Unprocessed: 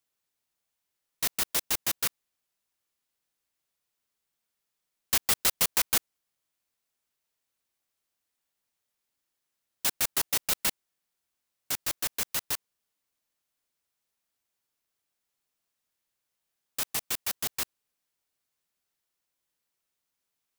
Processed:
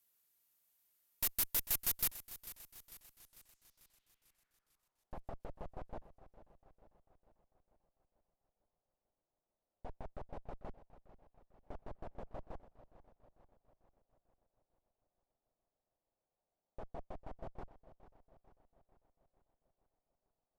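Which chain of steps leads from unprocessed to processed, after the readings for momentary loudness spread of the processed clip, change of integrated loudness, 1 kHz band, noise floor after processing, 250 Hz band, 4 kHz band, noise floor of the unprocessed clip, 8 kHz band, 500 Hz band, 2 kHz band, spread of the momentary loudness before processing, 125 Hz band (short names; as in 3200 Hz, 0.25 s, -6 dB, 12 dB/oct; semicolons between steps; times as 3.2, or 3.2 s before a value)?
23 LU, -12.0 dB, -12.5 dB, under -85 dBFS, -9.5 dB, -18.5 dB, -84 dBFS, -15.0 dB, -7.5 dB, -18.5 dB, 10 LU, -5.0 dB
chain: high shelf 10000 Hz +10 dB; tube stage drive 35 dB, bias 0.75; low-pass sweep 14000 Hz -> 680 Hz, 3.11–5.15; warbling echo 0.446 s, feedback 56%, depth 62 cents, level -15 dB; gain +3 dB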